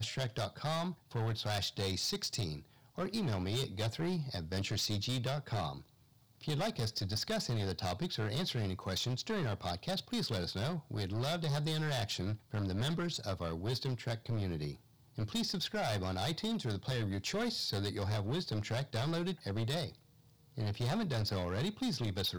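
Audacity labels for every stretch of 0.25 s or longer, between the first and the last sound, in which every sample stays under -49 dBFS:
2.620000	2.970000	silence
5.820000	6.410000	silence
14.770000	15.160000	silence
19.950000	20.570000	silence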